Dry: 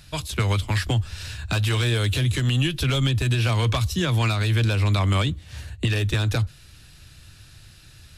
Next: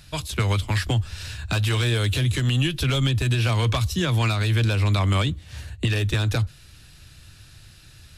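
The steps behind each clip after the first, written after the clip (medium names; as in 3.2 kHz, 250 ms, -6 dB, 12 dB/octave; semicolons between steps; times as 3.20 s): no audible change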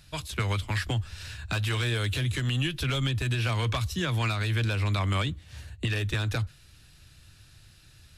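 dynamic bell 1.7 kHz, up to +4 dB, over -42 dBFS, Q 0.92; trim -6.5 dB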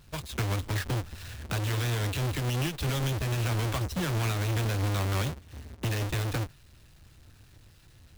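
square wave that keeps the level; trim -6 dB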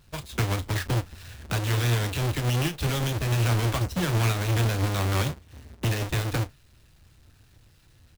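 doubling 34 ms -12 dB; upward expansion 1.5:1, over -39 dBFS; trim +5 dB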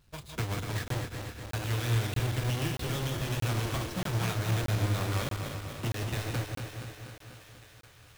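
backward echo that repeats 122 ms, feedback 78%, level -5.5 dB; thinning echo 746 ms, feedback 71%, high-pass 640 Hz, level -16 dB; crackling interface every 0.63 s, samples 1024, zero, from 0.88 s; trim -7.5 dB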